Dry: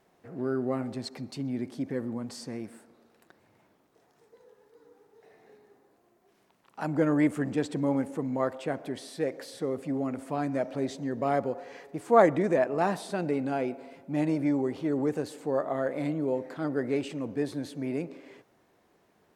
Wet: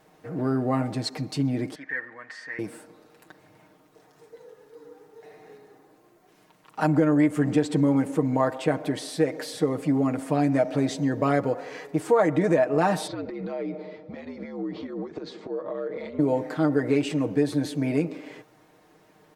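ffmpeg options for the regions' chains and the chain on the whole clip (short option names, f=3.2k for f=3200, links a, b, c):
-filter_complex "[0:a]asettb=1/sr,asplit=3[a][b][c];[a]atrim=end=1.754[d];[b]atrim=start=1.75:end=2.59,asetpts=PTS-STARTPTS,afade=t=in:d=0.004:c=qsin,afade=t=out:st=0.836:d=0.004:c=qsin,lowpass=f=1.8k:t=q:w=11,aderivative,acontrast=70[e];[c]atrim=start=2.586[f];[d][e]acrossfade=d=0.004:c1=hsin:c2=qsin[g];[g][f]acrossfade=d=0.004:c1=qsin:c2=hsin,asettb=1/sr,asplit=3[h][i][j];[h]atrim=end=13.074[k];[i]atrim=start=13.07:end=16.19,asetpts=PTS-STARTPTS,afade=t=in:d=0.004:c=qsin,afade=t=out:st=3.116:d=0.004:c=qsin,highpass=f=230:w=0.5412,highpass=f=230:w=1.3066,equalizer=f=280:t=q:w=4:g=-8,equalizer=f=850:t=q:w=4:g=-6,equalizer=f=1.6k:t=q:w=4:g=-7,equalizer=f=2.8k:t=q:w=4:g=-9,lowpass=f=4.4k:w=0.5412,lowpass=f=4.4k:w=1.3066,acompressor=threshold=-37dB:ratio=12:attack=3.2:release=140:knee=1:detection=peak,afreqshift=-70[l];[j]atrim=start=16.186[m];[k][l]acrossfade=d=0.004:c1=hsin:c2=qsin[n];[n][m]acrossfade=d=0.004:c1=qsin:c2=hsin,aecho=1:1:6.5:0.68,acompressor=threshold=-24dB:ratio=6,volume=7dB"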